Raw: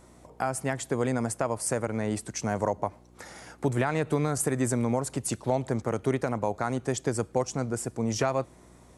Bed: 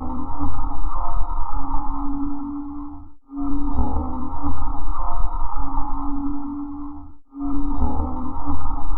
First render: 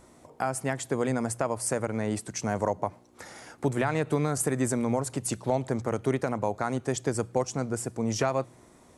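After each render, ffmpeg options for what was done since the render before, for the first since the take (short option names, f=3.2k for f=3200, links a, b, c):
-af "bandreject=f=60:t=h:w=4,bandreject=f=120:t=h:w=4,bandreject=f=180:t=h:w=4"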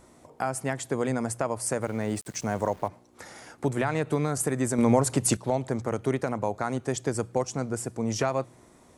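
-filter_complex "[0:a]asettb=1/sr,asplit=3[a][b][c];[a]atrim=end=1.824[d];[b]atrim=start=1.82:end=2.88,asetpts=PTS-STARTPTS,afade=t=in:d=0.004:c=qsin,afade=t=out:st=1.056:d=0.004:c=qsin,aeval=exprs='val(0)*gte(abs(val(0)),0.00531)':c=same[e];[c]atrim=start=2.876[f];[d][e]acrossfade=d=0.004:c1=hsin:c2=qsin[g];[g][f]acrossfade=d=0.004:c1=qsin:c2=hsin,asettb=1/sr,asplit=3[h][i][j];[h]atrim=end=4.784[k];[i]atrim=start=4.78:end=5.37,asetpts=PTS-STARTPTS,afade=t=in:d=0.004:c=qsin,afade=t=out:st=0.586:d=0.004:c=qsin,acontrast=74[l];[j]atrim=start=5.366[m];[k][l]acrossfade=d=0.004:c1=hsin:c2=qsin[n];[n][m]acrossfade=d=0.004:c1=qsin:c2=hsin"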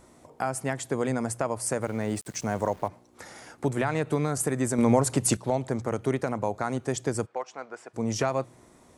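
-filter_complex "[0:a]asplit=3[a][b][c];[a]afade=t=out:st=7.25:d=0.02[d];[b]highpass=720,lowpass=2.9k,afade=t=in:st=7.25:d=0.02,afade=t=out:st=7.93:d=0.02[e];[c]afade=t=in:st=7.93:d=0.02[f];[d][e][f]amix=inputs=3:normalize=0"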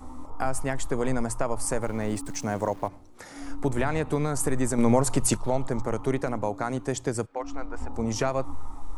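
-filter_complex "[1:a]volume=-15dB[a];[0:a][a]amix=inputs=2:normalize=0"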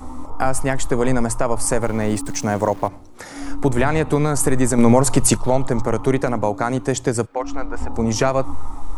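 -af "volume=8.5dB,alimiter=limit=-3dB:level=0:latency=1"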